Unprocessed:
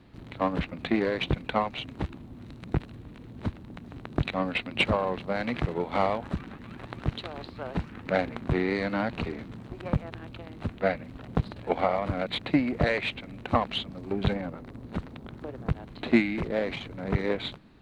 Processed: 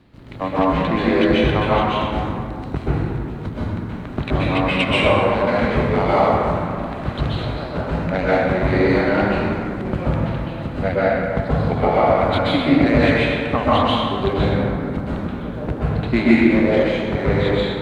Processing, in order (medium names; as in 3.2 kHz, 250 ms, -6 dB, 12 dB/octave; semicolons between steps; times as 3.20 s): plate-style reverb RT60 2.4 s, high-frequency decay 0.45×, pre-delay 115 ms, DRR -9 dB; trim +1.5 dB